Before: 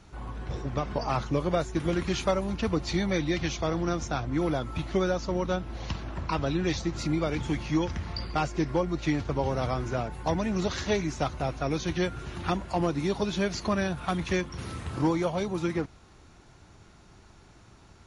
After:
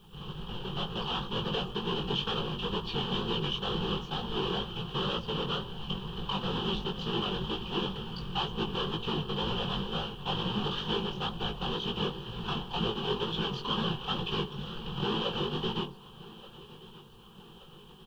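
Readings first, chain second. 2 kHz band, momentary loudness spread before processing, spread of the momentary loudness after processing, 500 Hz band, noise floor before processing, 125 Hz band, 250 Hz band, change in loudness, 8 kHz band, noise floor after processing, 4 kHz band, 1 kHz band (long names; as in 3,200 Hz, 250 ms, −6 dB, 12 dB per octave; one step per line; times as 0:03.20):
−5.0 dB, 5 LU, 10 LU, −6.0 dB, −55 dBFS, −5.0 dB, −6.5 dB, −3.5 dB, −16.0 dB, −52 dBFS, +8.0 dB, −3.0 dB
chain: each half-wave held at its own peak
notch filter 1,400 Hz, Q 13
hum removal 50.84 Hz, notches 24
sine wavefolder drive 5 dB, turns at −13 dBFS
random phases in short frames
transistor ladder low-pass 3,200 Hz, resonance 85%
bit reduction 11 bits
phaser with its sweep stopped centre 420 Hz, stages 8
chorus effect 2.1 Hz, delay 17.5 ms, depth 4 ms
repeating echo 1,178 ms, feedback 58%, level −19.5 dB
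level +3 dB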